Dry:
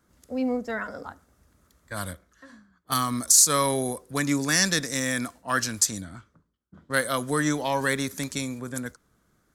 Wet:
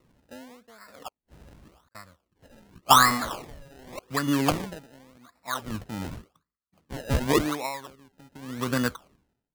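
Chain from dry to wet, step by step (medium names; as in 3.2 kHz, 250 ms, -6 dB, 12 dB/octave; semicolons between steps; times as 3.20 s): 2.93–3.99 s: one-bit delta coder 16 kbps, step -21 dBFS; compression 6:1, threshold -30 dBFS, peak gain reduction 13 dB; low-pass that closes with the level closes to 1.1 kHz, closed at -34 dBFS; peaking EQ 1.2 kHz +14.5 dB 0.89 oct; 1.08–1.95 s: inverted gate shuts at -43 dBFS, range -42 dB; 7.32–7.73 s: high-pass 430 Hz -> 190 Hz 6 dB/octave; level rider gain up to 11 dB; steep low-pass 1.9 kHz 96 dB/octave; decimation with a swept rate 27×, swing 100% 0.88 Hz; logarithmic tremolo 0.68 Hz, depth 29 dB; trim -1 dB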